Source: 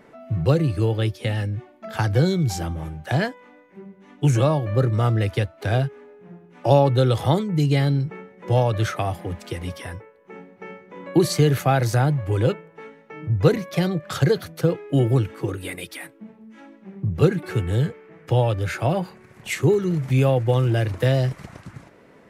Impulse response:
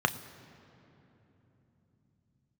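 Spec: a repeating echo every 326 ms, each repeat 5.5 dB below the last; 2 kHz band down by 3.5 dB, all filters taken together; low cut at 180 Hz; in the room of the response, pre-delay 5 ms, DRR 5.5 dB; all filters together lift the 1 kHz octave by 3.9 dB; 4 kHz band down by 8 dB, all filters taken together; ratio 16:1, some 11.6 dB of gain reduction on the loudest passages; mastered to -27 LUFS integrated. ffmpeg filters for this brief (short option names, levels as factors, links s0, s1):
-filter_complex "[0:a]highpass=180,equalizer=f=1000:t=o:g=7,equalizer=f=2000:t=o:g=-5.5,equalizer=f=4000:t=o:g=-9,acompressor=threshold=0.0891:ratio=16,aecho=1:1:326|652|978|1304|1630|1956|2282:0.531|0.281|0.149|0.079|0.0419|0.0222|0.0118,asplit=2[s0][s1];[1:a]atrim=start_sample=2205,adelay=5[s2];[s1][s2]afir=irnorm=-1:irlink=0,volume=0.15[s3];[s0][s3]amix=inputs=2:normalize=0"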